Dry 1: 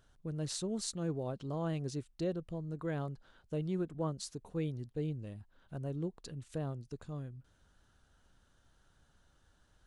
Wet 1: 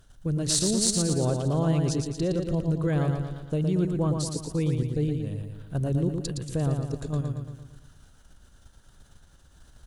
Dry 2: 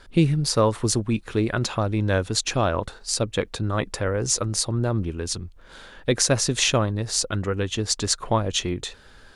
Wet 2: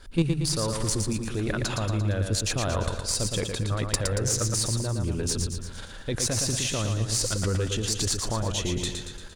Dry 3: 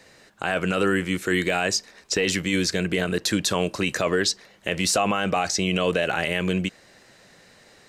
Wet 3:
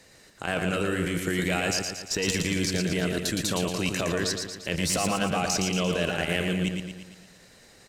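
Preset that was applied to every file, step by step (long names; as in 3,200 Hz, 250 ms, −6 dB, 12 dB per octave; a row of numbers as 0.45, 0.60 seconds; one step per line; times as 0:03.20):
in parallel at −1 dB: compressor whose output falls as the input rises −29 dBFS, ratio −1
on the sum: spectral tilt −2 dB per octave
output level in coarse steps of 10 dB
first-order pre-emphasis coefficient 0.8
harmonic generator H 5 −29 dB, 6 −24 dB, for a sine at −13.5 dBFS
on a send: repeating echo 115 ms, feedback 53%, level −5 dB
on the sum: loudness normalisation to −27 LKFS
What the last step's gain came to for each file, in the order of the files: +17.5, +5.5, +4.0 decibels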